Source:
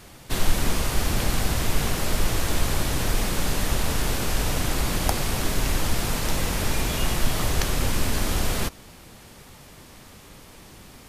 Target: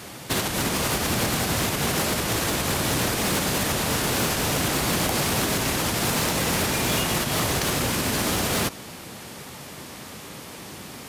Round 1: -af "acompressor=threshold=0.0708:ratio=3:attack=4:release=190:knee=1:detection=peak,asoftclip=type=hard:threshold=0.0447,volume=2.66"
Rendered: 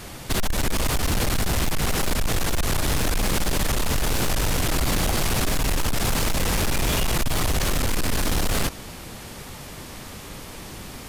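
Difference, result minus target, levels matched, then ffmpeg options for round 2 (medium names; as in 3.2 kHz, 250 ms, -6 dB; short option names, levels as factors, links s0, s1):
125 Hz band +3.0 dB
-af "acompressor=threshold=0.0708:ratio=3:attack=4:release=190:knee=1:detection=peak,highpass=120,asoftclip=type=hard:threshold=0.0447,volume=2.66"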